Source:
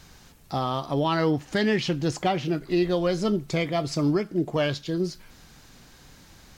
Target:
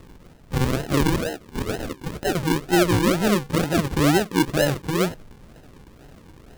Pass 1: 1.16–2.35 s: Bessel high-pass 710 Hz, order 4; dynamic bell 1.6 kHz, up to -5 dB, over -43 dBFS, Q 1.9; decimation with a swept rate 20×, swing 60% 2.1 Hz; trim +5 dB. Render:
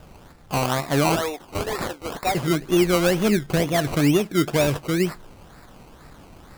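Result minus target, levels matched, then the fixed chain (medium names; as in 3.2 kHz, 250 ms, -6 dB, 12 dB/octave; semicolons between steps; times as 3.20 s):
decimation with a swept rate: distortion -11 dB
1.16–2.35 s: Bessel high-pass 710 Hz, order 4; dynamic bell 1.6 kHz, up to -5 dB, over -43 dBFS, Q 1.9; decimation with a swept rate 54×, swing 60% 2.1 Hz; trim +5 dB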